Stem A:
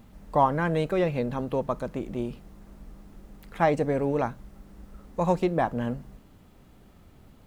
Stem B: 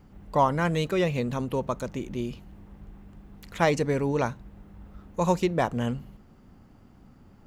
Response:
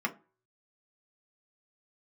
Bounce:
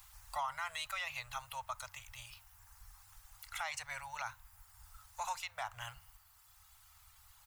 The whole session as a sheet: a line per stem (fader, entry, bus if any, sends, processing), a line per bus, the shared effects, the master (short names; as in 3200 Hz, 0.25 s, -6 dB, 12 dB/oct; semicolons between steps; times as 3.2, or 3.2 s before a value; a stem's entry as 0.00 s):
-1.5 dB, 0.00 s, no send, reverb removal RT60 1.9 s; tone controls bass -7 dB, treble +14 dB; compressor 2:1, threshold -35 dBFS, peak gain reduction 11 dB
-4.5 dB, 1.2 ms, no send, HPF 120 Hz 12 dB/oct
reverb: off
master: inverse Chebyshev band-stop 180–420 Hz, stop band 60 dB; limiter -29 dBFS, peak gain reduction 11.5 dB